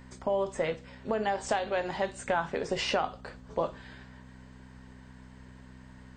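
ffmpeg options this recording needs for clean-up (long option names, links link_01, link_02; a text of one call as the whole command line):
ffmpeg -i in.wav -af "bandreject=frequency=63.6:width_type=h:width=4,bandreject=frequency=127.2:width_type=h:width=4,bandreject=frequency=190.8:width_type=h:width=4,bandreject=frequency=254.4:width_type=h:width=4" out.wav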